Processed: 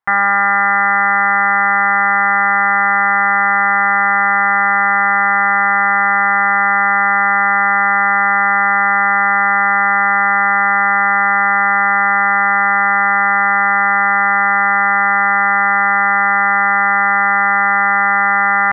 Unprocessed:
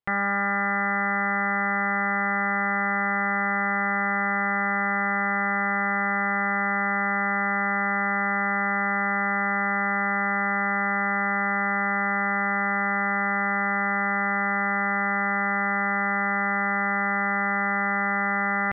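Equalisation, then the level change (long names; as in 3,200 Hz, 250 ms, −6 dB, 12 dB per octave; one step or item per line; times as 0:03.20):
flat-topped bell 1,200 Hz +13.5 dB
0.0 dB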